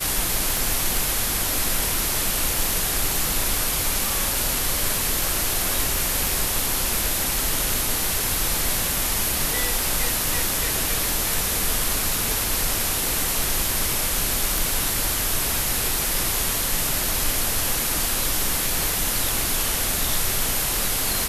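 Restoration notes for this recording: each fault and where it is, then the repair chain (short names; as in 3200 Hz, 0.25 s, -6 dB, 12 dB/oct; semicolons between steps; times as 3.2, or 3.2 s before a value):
0.57 pop
6.27 pop
14.58 pop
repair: de-click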